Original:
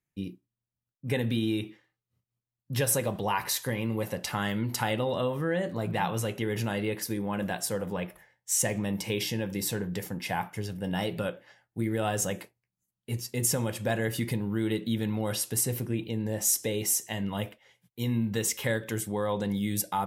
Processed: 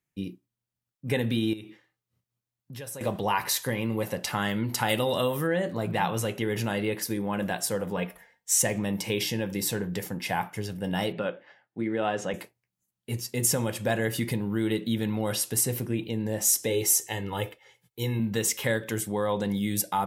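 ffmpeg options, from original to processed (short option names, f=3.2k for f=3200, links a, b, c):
-filter_complex "[0:a]asettb=1/sr,asplit=3[a][b][c];[a]atrim=end=1.534[d];[b]atrim=start=1.53:end=3.01,asetpts=PTS-STARTPTS,afade=t=in:d=0.004:c=qsin,afade=t=out:st=1.476:d=0.004:c=qsin,acompressor=threshold=-43dB:ratio=3:attack=3.2:release=140:knee=1:detection=peak[e];[c]atrim=start=3.006[f];[d][e]acrossfade=d=0.004:c1=hsin:c2=qsin[g];[g][f]acrossfade=d=0.004:c1=qsin:c2=hsin,asplit=3[h][i][j];[h]afade=t=out:st=4.88:d=0.02[k];[i]aemphasis=mode=production:type=75kf,afade=t=in:st=4.88:d=0.02,afade=t=out:st=5.46:d=0.02[l];[j]afade=t=in:st=5.46:d=0.02[m];[k][l][m]amix=inputs=3:normalize=0,asettb=1/sr,asplit=3[n][o][p];[n]atrim=end=7.974[q];[o]atrim=start=7.97:end=8.62,asetpts=PTS-STARTPTS,afade=t=in:d=0.004:c=qsin,afade=t=out:st=0.646:d=0.004:c=qsin,aecho=1:1:4.3:0.6,atrim=end_sample=28665[r];[p]atrim=start=8.616[s];[q][r]acrossfade=d=0.004:c1=hsin:c2=qsin[t];[t][s]acrossfade=d=0.004:c1=qsin:c2=hsin,asettb=1/sr,asplit=3[u][v][w];[u]atrim=end=11.124[x];[v]atrim=start=11.12:end=12.34,asetpts=PTS-STARTPTS,afade=t=in:d=0.004:c=qsin,afade=t=out:st=1.216:d=0.004:c=qsin,highpass=180,lowpass=3.2k[y];[w]atrim=start=12.336[z];[x][y]acrossfade=d=0.004:c1=hsin:c2=qsin[aa];[aa][z]acrossfade=d=0.004:c1=qsin:c2=hsin,asettb=1/sr,asplit=3[ab][ac][ad];[ab]atrim=end=16.704[ae];[ac]atrim=start=16.7:end=18.2,asetpts=PTS-STARTPTS,afade=t=in:d=0.004:c=qsin,afade=t=out:st=1.496:d=0.004:c=qsin,aecho=1:1:2.3:0.63,atrim=end_sample=66150[af];[ad]atrim=start=18.196[ag];[ae][af]acrossfade=d=0.004:c1=hsin:c2=qsin[ah];[ah][ag]acrossfade=d=0.004:c1=qsin:c2=hsin,lowshelf=f=89:g=-6,volume=2.5dB"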